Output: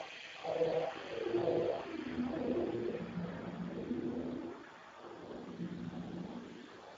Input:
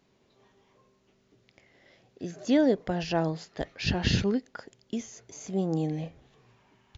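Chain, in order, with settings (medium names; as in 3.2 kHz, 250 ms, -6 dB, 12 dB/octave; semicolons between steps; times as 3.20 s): in parallel at 0 dB: compression 5:1, threshold -41 dBFS, peak gain reduction 19.5 dB; on the sum: Paulstretch 31×, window 0.25 s, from 6.04 s; LFO high-pass sine 1.1 Hz 440–1800 Hz; ever faster or slower copies 478 ms, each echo -6 st, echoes 3; trim +2 dB; Speex 8 kbps 16 kHz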